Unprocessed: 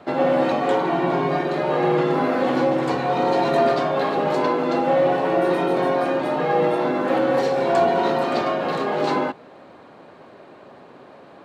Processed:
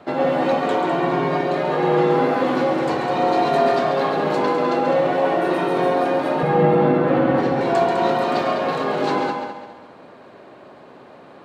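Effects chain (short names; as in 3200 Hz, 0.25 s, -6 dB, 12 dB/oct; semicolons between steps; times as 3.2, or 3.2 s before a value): 6.43–7.61 tone controls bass +12 dB, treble -12 dB; multi-head echo 68 ms, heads second and third, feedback 40%, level -8 dB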